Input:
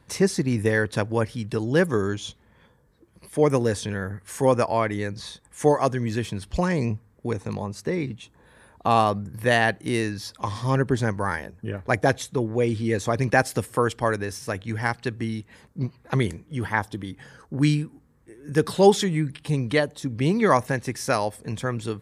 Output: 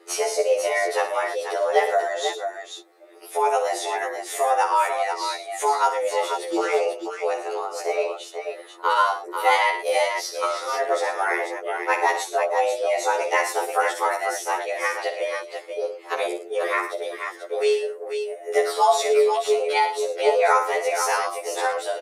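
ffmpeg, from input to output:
ffmpeg -i in.wav -af "acompressor=threshold=-30dB:ratio=1.5,afreqshift=270,aecho=1:1:59|111|490:0.355|0.237|0.447,afftfilt=real='re*2*eq(mod(b,4),0)':imag='im*2*eq(mod(b,4),0)':win_size=2048:overlap=0.75,volume=7.5dB" out.wav

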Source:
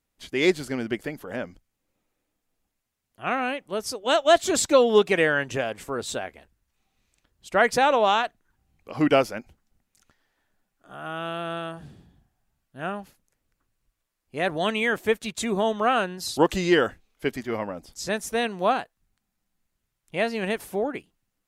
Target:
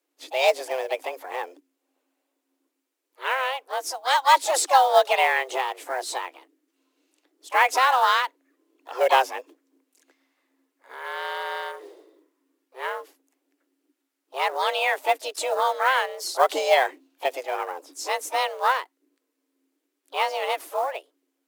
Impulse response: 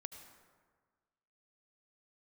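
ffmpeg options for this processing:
-filter_complex "[0:a]afreqshift=260,asplit=3[link_01][link_02][link_03];[link_02]asetrate=55563,aresample=44100,atempo=0.793701,volume=-11dB[link_04];[link_03]asetrate=58866,aresample=44100,atempo=0.749154,volume=-14dB[link_05];[link_01][link_04][link_05]amix=inputs=3:normalize=0,acrusher=bits=6:mode=log:mix=0:aa=0.000001"

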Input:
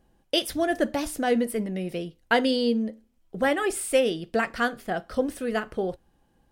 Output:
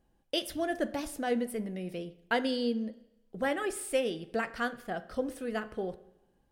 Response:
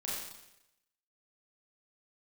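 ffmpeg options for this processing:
-filter_complex "[0:a]asplit=2[link_01][link_02];[1:a]atrim=start_sample=2205,highshelf=frequency=4500:gain=-12[link_03];[link_02][link_03]afir=irnorm=-1:irlink=0,volume=-15.5dB[link_04];[link_01][link_04]amix=inputs=2:normalize=0,volume=-8dB"

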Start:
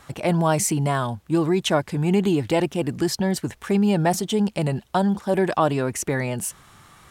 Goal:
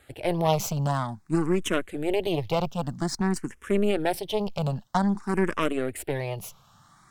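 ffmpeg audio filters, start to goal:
ffmpeg -i in.wav -filter_complex "[0:a]aeval=exprs='0.447*(cos(1*acos(clip(val(0)/0.447,-1,1)))-cos(1*PI/2))+0.0447*(cos(2*acos(clip(val(0)/0.447,-1,1)))-cos(2*PI/2))+0.1*(cos(3*acos(clip(val(0)/0.447,-1,1)))-cos(3*PI/2))+0.0562*(cos(4*acos(clip(val(0)/0.447,-1,1)))-cos(4*PI/2))+0.00355*(cos(5*acos(clip(val(0)/0.447,-1,1)))-cos(5*PI/2))':channel_layout=same,apsyclip=12.5dB,asplit=2[link_01][link_02];[link_02]afreqshift=0.51[link_03];[link_01][link_03]amix=inputs=2:normalize=1,volume=-9dB" out.wav

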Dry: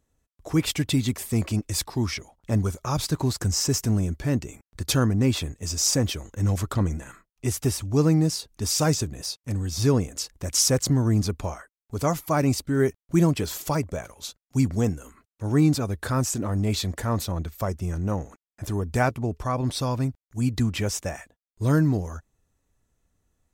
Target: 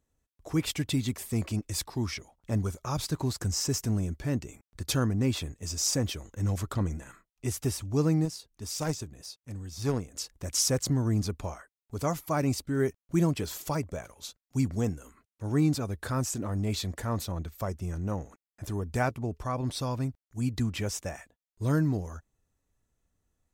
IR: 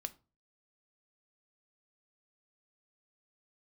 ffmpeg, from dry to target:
-filter_complex "[0:a]asettb=1/sr,asplit=3[link_01][link_02][link_03];[link_01]atrim=end=8.254[link_04];[link_02]atrim=start=8.25:end=10.14,asetpts=PTS-STARTPTS,afade=type=in:duration=0.004:curve=qsin,afade=type=out:start_time=1.886:duration=0.004:curve=qsin,aeval=exprs='0.335*(cos(1*acos(clip(val(0)/0.335,-1,1)))-cos(1*PI/2))+0.0596*(cos(3*acos(clip(val(0)/0.335,-1,1)))-cos(3*PI/2))':channel_layout=same[link_05];[link_03]atrim=start=10.136[link_06];[link_04][link_05]acrossfade=duration=0.004:curve1=hsin:curve2=qsin[link_07];[link_07][link_06]acrossfade=duration=0.004:curve1=qsin:curve2=hsin,volume=-5.5dB"

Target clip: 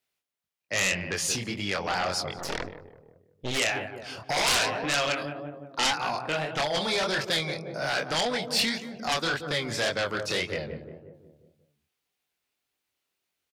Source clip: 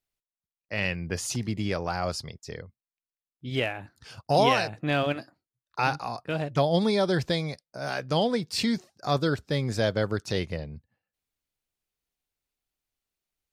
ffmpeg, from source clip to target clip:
ffmpeg -i in.wav -filter_complex "[0:a]highpass=90,asplit=2[link_01][link_02];[link_02]adelay=178,lowpass=frequency=1200:poles=1,volume=-11dB,asplit=2[link_03][link_04];[link_04]adelay=178,lowpass=frequency=1200:poles=1,volume=0.55,asplit=2[link_05][link_06];[link_06]adelay=178,lowpass=frequency=1200:poles=1,volume=0.55,asplit=2[link_07][link_08];[link_08]adelay=178,lowpass=frequency=1200:poles=1,volume=0.55,asplit=2[link_09][link_10];[link_10]adelay=178,lowpass=frequency=1200:poles=1,volume=0.55,asplit=2[link_11][link_12];[link_12]adelay=178,lowpass=frequency=1200:poles=1,volume=0.55[link_13];[link_03][link_05][link_07][link_09][link_11][link_13]amix=inputs=6:normalize=0[link_14];[link_01][link_14]amix=inputs=2:normalize=0,flanger=delay=20:depth=7:speed=1.8,acrossover=split=790|1200[link_15][link_16][link_17];[link_15]acompressor=threshold=-36dB:ratio=6[link_18];[link_18][link_16][link_17]amix=inputs=3:normalize=0,asplit=3[link_19][link_20][link_21];[link_19]afade=type=out:start_time=2.37:duration=0.02[link_22];[link_20]aeval=exprs='0.0473*(cos(1*acos(clip(val(0)/0.0473,-1,1)))-cos(1*PI/2))+0.0211*(cos(6*acos(clip(val(0)/0.0473,-1,1)))-cos(6*PI/2))':channel_layout=same,afade=type=in:start_time=2.37:duration=0.02,afade=type=out:start_time=3.57:duration=0.02[link_23];[link_21]afade=type=in:start_time=3.57:duration=0.02[link_24];[link_22][link_23][link_24]amix=inputs=3:normalize=0,bass=frequency=250:gain=-5,treble=frequency=4000:gain=-12,aeval=exprs='0.158*sin(PI/2*4.47*val(0)/0.158)':channel_layout=same,highshelf=frequency=2900:gain=11.5,volume=-8.5dB" out.wav

